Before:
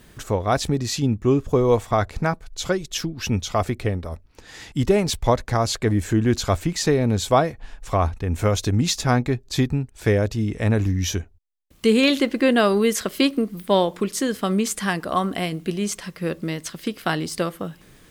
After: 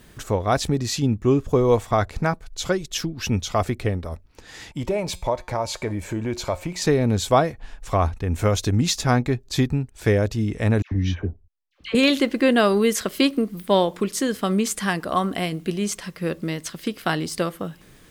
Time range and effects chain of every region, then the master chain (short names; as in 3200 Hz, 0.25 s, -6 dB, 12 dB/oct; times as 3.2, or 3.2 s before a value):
4.71–6.82 small resonant body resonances 600/910/2300 Hz, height 12 dB, ringing for 20 ms + compressor 2:1, threshold -18 dBFS + resonator 180 Hz, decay 0.42 s, mix 50%
10.82–11.95 air absorption 270 m + dispersion lows, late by 96 ms, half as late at 1100 Hz
whole clip: dry